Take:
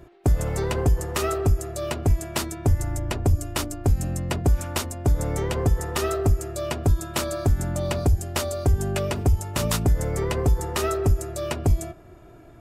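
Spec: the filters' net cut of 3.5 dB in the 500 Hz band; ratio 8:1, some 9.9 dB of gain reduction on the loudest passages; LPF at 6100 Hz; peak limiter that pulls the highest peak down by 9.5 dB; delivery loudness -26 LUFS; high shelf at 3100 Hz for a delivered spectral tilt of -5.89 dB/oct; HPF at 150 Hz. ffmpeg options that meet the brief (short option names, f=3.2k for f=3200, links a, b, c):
-af "highpass=150,lowpass=6.1k,equalizer=f=500:t=o:g=-4.5,highshelf=f=3.1k:g=-6,acompressor=threshold=-32dB:ratio=8,volume=12.5dB,alimiter=limit=-14.5dB:level=0:latency=1"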